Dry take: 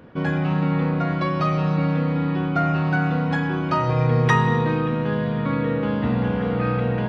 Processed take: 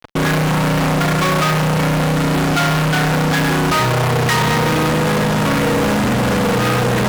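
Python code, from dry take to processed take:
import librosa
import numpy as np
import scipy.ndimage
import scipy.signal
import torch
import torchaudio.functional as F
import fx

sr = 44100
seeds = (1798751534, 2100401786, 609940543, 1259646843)

y = fx.fuzz(x, sr, gain_db=41.0, gate_db=-39.0)
y = fx.low_shelf(y, sr, hz=350.0, db=-2.5)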